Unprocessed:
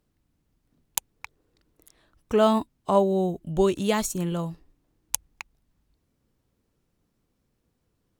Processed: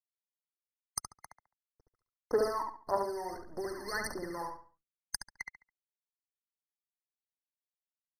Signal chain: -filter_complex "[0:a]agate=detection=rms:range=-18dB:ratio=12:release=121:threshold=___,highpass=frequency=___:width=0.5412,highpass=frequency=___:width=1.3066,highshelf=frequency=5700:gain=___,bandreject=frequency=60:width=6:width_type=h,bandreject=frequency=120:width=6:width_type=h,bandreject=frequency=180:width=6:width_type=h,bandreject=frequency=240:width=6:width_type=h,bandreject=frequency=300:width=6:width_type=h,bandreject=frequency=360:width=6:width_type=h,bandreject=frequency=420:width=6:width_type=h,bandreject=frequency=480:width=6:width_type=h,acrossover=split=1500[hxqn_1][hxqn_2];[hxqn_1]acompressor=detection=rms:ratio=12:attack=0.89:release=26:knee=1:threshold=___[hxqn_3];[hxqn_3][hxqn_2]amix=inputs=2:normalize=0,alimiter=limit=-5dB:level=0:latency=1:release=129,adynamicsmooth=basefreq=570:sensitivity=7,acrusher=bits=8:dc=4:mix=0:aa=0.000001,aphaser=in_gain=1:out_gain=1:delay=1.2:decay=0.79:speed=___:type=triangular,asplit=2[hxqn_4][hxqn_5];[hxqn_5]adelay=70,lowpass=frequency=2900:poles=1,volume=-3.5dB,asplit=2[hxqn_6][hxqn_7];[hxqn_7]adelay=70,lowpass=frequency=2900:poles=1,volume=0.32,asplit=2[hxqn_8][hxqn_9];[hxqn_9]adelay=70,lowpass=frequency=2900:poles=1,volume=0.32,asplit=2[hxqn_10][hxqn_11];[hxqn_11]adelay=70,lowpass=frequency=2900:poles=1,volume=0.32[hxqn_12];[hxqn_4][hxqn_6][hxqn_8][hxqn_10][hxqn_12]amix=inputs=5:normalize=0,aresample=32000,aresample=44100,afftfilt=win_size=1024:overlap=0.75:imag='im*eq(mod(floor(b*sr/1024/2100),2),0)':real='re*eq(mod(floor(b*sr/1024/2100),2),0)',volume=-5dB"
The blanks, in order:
-59dB, 370, 370, 2.5, -30dB, 1.7